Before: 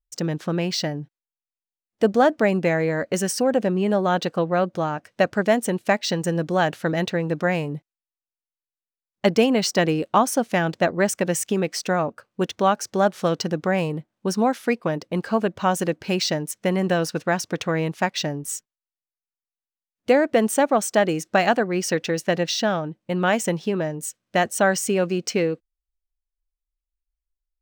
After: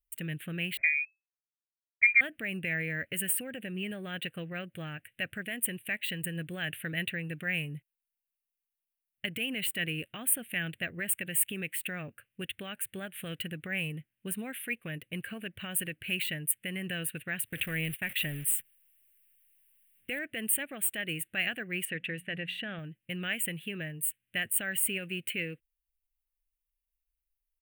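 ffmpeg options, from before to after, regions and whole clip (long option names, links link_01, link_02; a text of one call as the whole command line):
ffmpeg -i in.wav -filter_complex "[0:a]asettb=1/sr,asplit=3[link_01][link_02][link_03];[link_01]atrim=end=0.774[link_04];[link_02]atrim=start=0.77:end=2.21,asetpts=PTS-STARTPTS,afade=type=in:duration=0.004:curve=qsin,afade=type=out:start_time=1.436:duration=0.004:curve=qsin,aeval=exprs='sgn(val(0))*max(abs(val(0))-0.00355,0)':channel_layout=same,lowpass=frequency=2200:width_type=q:width=0.5098,lowpass=frequency=2200:width_type=q:width=0.6013,lowpass=frequency=2200:width_type=q:width=0.9,lowpass=frequency=2200:width_type=q:width=2.563,afreqshift=-2600[link_05];[link_03]atrim=start=2.206[link_06];[link_04][link_05]acrossfade=duration=0.004:curve1=hsin:curve2=qsin[link_07];[link_07][link_06]acrossfade=duration=0.004:curve1=qsin:curve2=hsin,asettb=1/sr,asplit=3[link_08][link_09][link_10];[link_08]atrim=end=17.454[link_11];[link_09]atrim=start=17.45:end=20.19,asetpts=PTS-STARTPTS,afade=type=in:duration=0.004:curve=qsin,afade=type=out:start_time=2.736:duration=0.004:curve=qsin,aeval=exprs='val(0)+0.5*0.0251*sgn(val(0))':channel_layout=same,agate=range=-29dB:threshold=-33dB:ratio=16:release=100:detection=peak[link_12];[link_10]atrim=start=20.186[link_13];[link_11][link_12]acrossfade=duration=0.004:curve1=hsin:curve2=qsin[link_14];[link_14][link_13]acrossfade=duration=0.004:curve1=qsin:curve2=hsin,asettb=1/sr,asplit=3[link_15][link_16][link_17];[link_15]atrim=end=21.854[link_18];[link_16]atrim=start=21.85:end=22.79,asetpts=PTS-STARTPTS,afade=type=in:duration=0.004:curve=qsin,afade=type=out:start_time=0.936:duration=0.004:curve=qsin,aemphasis=mode=reproduction:type=75fm,bandreject=frequency=60:width_type=h:width=6,bandreject=frequency=120:width_type=h:width=6,bandreject=frequency=180:width_type=h:width=6,bandreject=frequency=240:width_type=h:width=6[link_19];[link_17]atrim=start=22.786[link_20];[link_18][link_19]acrossfade=duration=0.004:curve1=hsin:curve2=qsin[link_21];[link_21][link_20]acrossfade=duration=0.004:curve1=qsin:curve2=hsin,equalizer=frequency=5400:width=0.68:gain=-11.5,alimiter=limit=-15dB:level=0:latency=1:release=91,firequalizer=gain_entry='entry(120,0);entry(190,-9);entry(310,-12);entry(630,-16);entry(940,-24);entry(1700,4);entry(2800,13);entry(5400,-23);entry(8900,14)':delay=0.05:min_phase=1,volume=-4.5dB" out.wav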